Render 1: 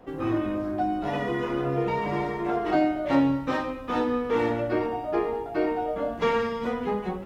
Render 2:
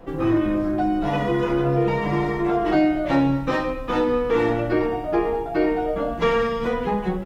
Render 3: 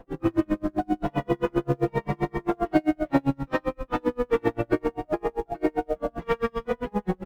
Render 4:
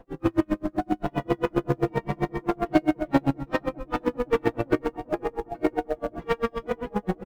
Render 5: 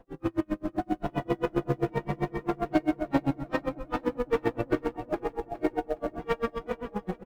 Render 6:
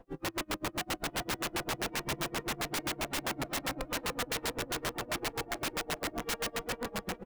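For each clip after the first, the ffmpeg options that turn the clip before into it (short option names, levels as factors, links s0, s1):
-filter_complex "[0:a]lowshelf=f=78:g=10,aecho=1:1:6:0.43,asplit=2[s0][s1];[s1]alimiter=limit=0.112:level=0:latency=1,volume=0.708[s2];[s0][s2]amix=inputs=2:normalize=0"
-filter_complex "[0:a]asplit=2[s0][s1];[s1]acrusher=bits=4:mode=log:mix=0:aa=0.000001,volume=0.562[s2];[s0][s2]amix=inputs=2:normalize=0,highshelf=f=3800:g=-9,aeval=exprs='val(0)*pow(10,-39*(0.5-0.5*cos(2*PI*7.6*n/s))/20)':c=same,volume=0.794"
-filter_complex "[0:a]asplit=2[s0][s1];[s1]adelay=504,lowpass=f=910:p=1,volume=0.141,asplit=2[s2][s3];[s3]adelay=504,lowpass=f=910:p=1,volume=0.53,asplit=2[s4][s5];[s5]adelay=504,lowpass=f=910:p=1,volume=0.53,asplit=2[s6][s7];[s7]adelay=504,lowpass=f=910:p=1,volume=0.53,asplit=2[s8][s9];[s9]adelay=504,lowpass=f=910:p=1,volume=0.53[s10];[s0][s2][s4][s6][s8][s10]amix=inputs=6:normalize=0,asplit=2[s11][s12];[s12]acrusher=bits=2:mix=0:aa=0.5,volume=0.447[s13];[s11][s13]amix=inputs=2:normalize=0,volume=0.75"
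-af "dynaudnorm=f=100:g=13:m=1.5,asoftclip=type=tanh:threshold=0.447,aecho=1:1:414|828|1242:0.168|0.0436|0.0113,volume=0.531"
-af "aeval=exprs='(mod(23.7*val(0)+1,2)-1)/23.7':c=same"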